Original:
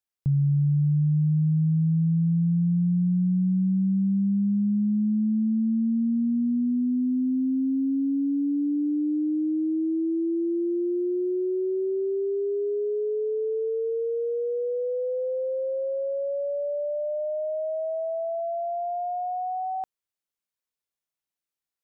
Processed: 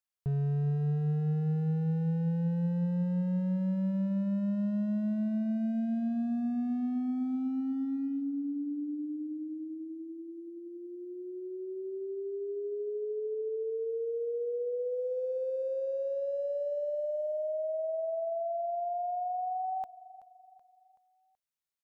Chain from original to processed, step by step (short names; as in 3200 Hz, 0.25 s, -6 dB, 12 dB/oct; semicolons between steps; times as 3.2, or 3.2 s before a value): bell 340 Hz -15 dB 0.37 oct; in parallel at -5 dB: wavefolder -26.5 dBFS; on the sum: feedback echo 0.378 s, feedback 47%, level -18 dB; gain -7.5 dB